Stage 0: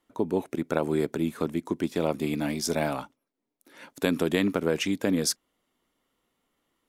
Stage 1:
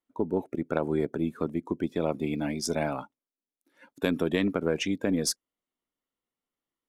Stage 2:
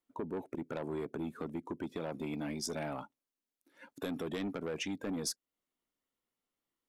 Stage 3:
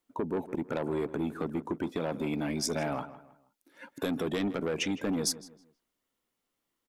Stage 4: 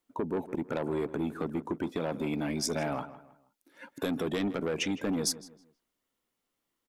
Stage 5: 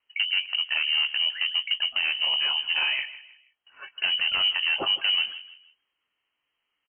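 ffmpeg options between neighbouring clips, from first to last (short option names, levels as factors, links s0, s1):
-af "afftdn=nr=15:nf=-40,aeval=exprs='0.398*(cos(1*acos(clip(val(0)/0.398,-1,1)))-cos(1*PI/2))+0.0126*(cos(4*acos(clip(val(0)/0.398,-1,1)))-cos(4*PI/2))':c=same,volume=0.841"
-filter_complex "[0:a]acrossover=split=3500[s0][s1];[s0]asoftclip=type=tanh:threshold=0.0531[s2];[s2][s1]amix=inputs=2:normalize=0,acompressor=threshold=0.01:ratio=2"
-filter_complex "[0:a]asplit=2[s0][s1];[s1]adelay=159,lowpass=f=2700:p=1,volume=0.188,asplit=2[s2][s3];[s3]adelay=159,lowpass=f=2700:p=1,volume=0.35,asplit=2[s4][s5];[s5]adelay=159,lowpass=f=2700:p=1,volume=0.35[s6];[s0][s2][s4][s6]amix=inputs=4:normalize=0,volume=2.11"
-af anull
-filter_complex "[0:a]lowpass=f=2700:t=q:w=0.5098,lowpass=f=2700:t=q:w=0.6013,lowpass=f=2700:t=q:w=0.9,lowpass=f=2700:t=q:w=2.563,afreqshift=-3200,asplit=2[s0][s1];[s1]adelay=21,volume=0.251[s2];[s0][s2]amix=inputs=2:normalize=0,volume=2"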